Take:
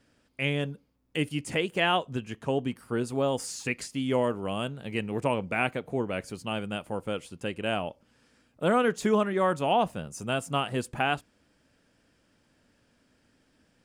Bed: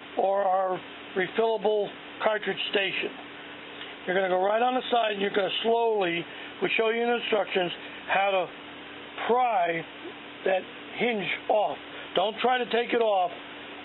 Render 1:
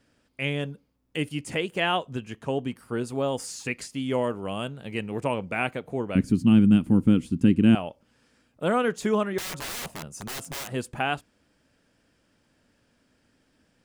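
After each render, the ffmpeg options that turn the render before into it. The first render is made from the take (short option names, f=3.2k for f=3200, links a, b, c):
-filter_complex "[0:a]asettb=1/sr,asplit=3[a][b][c];[a]atrim=end=6.154[d];[b]atrim=start=6.15:end=7.75,asetpts=PTS-STARTPTS,afade=t=in:d=0.004:c=qsin,afade=t=out:st=1.596:d=0.004:c=qsin,lowshelf=f=390:t=q:w=3:g=14[e];[c]atrim=start=7.746[f];[d][e]acrossfade=d=0.004:c1=hsin:c2=qsin[g];[g][f]acrossfade=d=0.004:c1=qsin:c2=hsin,asettb=1/sr,asplit=3[h][i][j];[h]atrim=end=9.384[k];[i]atrim=start=9.38:end=10.68,asetpts=PTS-STARTPTS,afade=t=in:d=0.004:c=qsin,afade=t=out:st=1.296:d=0.004:c=qsin,aeval=exprs='(mod(29.9*val(0)+1,2)-1)/29.9':c=same[l];[j]atrim=start=10.676[m];[k][l]acrossfade=d=0.004:c1=hsin:c2=qsin[n];[n][m]acrossfade=d=0.004:c1=qsin:c2=hsin"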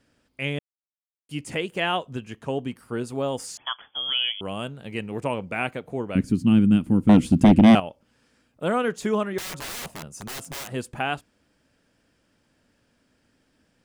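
-filter_complex "[0:a]asettb=1/sr,asplit=3[a][b][c];[a]atrim=end=3.574[d];[b]atrim=start=3.57:end=4.41,asetpts=PTS-STARTPTS,afade=t=in:d=0.004:c=qsin,afade=t=out:st=0.836:d=0.004:c=qsin,lowpass=f=3k:t=q:w=0.5098,lowpass=f=3k:t=q:w=0.6013,lowpass=f=3k:t=q:w=0.9,lowpass=f=3k:t=q:w=2.563,afreqshift=-3500[e];[c]atrim=start=4.406[f];[d][e]acrossfade=d=0.004:c1=hsin:c2=qsin[g];[g][f]acrossfade=d=0.004:c1=qsin:c2=hsin,asettb=1/sr,asplit=3[h][i][j];[h]atrim=end=7.094[k];[i]atrim=start=7.09:end=7.8,asetpts=PTS-STARTPTS,afade=t=in:d=0.004:c=qsin,afade=t=out:st=0.706:d=0.004:c=qsin,aeval=exprs='0.398*sin(PI/2*2*val(0)/0.398)':c=same[l];[j]atrim=start=7.796[m];[k][l]acrossfade=d=0.004:c1=hsin:c2=qsin[n];[n][m]acrossfade=d=0.004:c1=qsin:c2=hsin,asplit=3[o][p][q];[o]atrim=end=0.59,asetpts=PTS-STARTPTS,afade=t=out:st=0.586:d=0.004:c=hsin[r];[p]atrim=start=0.59:end=1.29,asetpts=PTS-STARTPTS,volume=0[s];[q]atrim=start=1.29,asetpts=PTS-STARTPTS,afade=t=in:d=0.004:c=hsin[t];[r][s][t]concat=n=3:v=0:a=1"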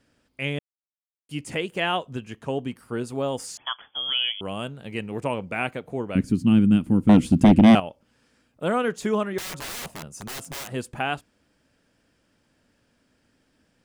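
-af anull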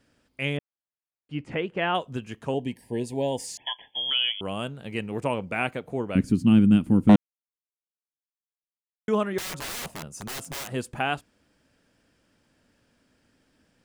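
-filter_complex "[0:a]asettb=1/sr,asplit=3[a][b][c];[a]atrim=end=0.574[d];[b]atrim=start=0.57:end=1.95,asetpts=PTS-STARTPTS,afade=t=in:d=0.004:c=qsin,afade=t=out:st=1.376:d=0.004:c=qsin,lowpass=2.3k[e];[c]atrim=start=1.946[f];[d][e]acrossfade=d=0.004:c1=hsin:c2=qsin[g];[g][f]acrossfade=d=0.004:c1=qsin:c2=hsin,asettb=1/sr,asplit=3[h][i][j];[h]atrim=end=2.544[k];[i]atrim=start=2.54:end=4.11,asetpts=PTS-STARTPTS,afade=t=in:d=0.004:c=qsin,afade=t=out:st=1.566:d=0.004:c=qsin,asuperstop=centerf=1300:order=20:qfactor=2.1[l];[j]atrim=start=4.106[m];[k][l]acrossfade=d=0.004:c1=hsin:c2=qsin[n];[n][m]acrossfade=d=0.004:c1=qsin:c2=hsin,asplit=3[o][p][q];[o]atrim=end=7.16,asetpts=PTS-STARTPTS,afade=t=out:st=7.156:d=0.004:c=hsin[r];[p]atrim=start=7.16:end=9.08,asetpts=PTS-STARTPTS,volume=0[s];[q]atrim=start=9.08,asetpts=PTS-STARTPTS,afade=t=in:d=0.004:c=hsin[t];[r][s][t]concat=n=3:v=0:a=1"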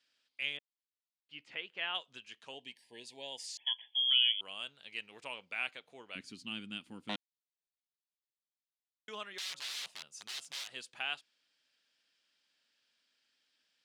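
-af "bandpass=f=3.8k:t=q:w=1.8:csg=0"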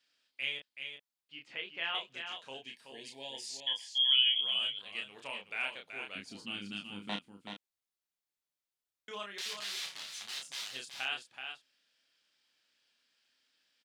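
-filter_complex "[0:a]asplit=2[a][b];[b]adelay=30,volume=-4dB[c];[a][c]amix=inputs=2:normalize=0,aecho=1:1:378:0.447"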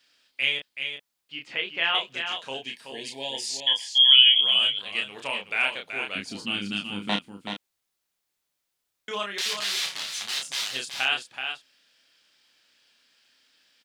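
-af "volume=11.5dB"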